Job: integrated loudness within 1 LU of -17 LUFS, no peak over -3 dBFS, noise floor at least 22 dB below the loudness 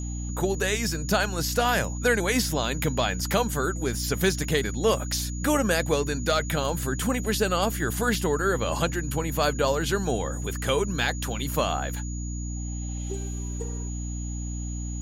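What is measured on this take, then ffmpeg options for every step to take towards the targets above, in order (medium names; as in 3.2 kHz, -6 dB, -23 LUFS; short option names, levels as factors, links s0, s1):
hum 60 Hz; highest harmonic 300 Hz; hum level -29 dBFS; steady tone 6.8 kHz; tone level -40 dBFS; loudness -26.5 LUFS; peak level -10.5 dBFS; loudness target -17.0 LUFS
-> -af "bandreject=f=60:t=h:w=4,bandreject=f=120:t=h:w=4,bandreject=f=180:t=h:w=4,bandreject=f=240:t=h:w=4,bandreject=f=300:t=h:w=4"
-af "bandreject=f=6800:w=30"
-af "volume=2.99,alimiter=limit=0.708:level=0:latency=1"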